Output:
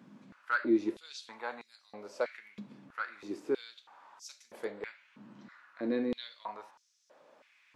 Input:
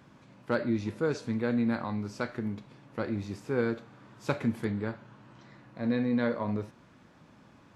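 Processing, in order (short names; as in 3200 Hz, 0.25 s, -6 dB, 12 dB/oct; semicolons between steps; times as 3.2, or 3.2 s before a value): stepped high-pass 3.1 Hz 210–5700 Hz; gain -5 dB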